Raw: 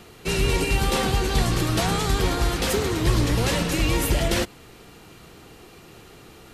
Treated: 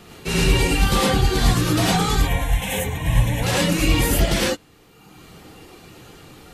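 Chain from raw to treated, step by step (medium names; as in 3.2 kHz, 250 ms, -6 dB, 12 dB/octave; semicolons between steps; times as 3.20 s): reverb removal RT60 1.4 s; 2.16–3.43 s: static phaser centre 1.3 kHz, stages 6; gated-style reverb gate 130 ms rising, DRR -4.5 dB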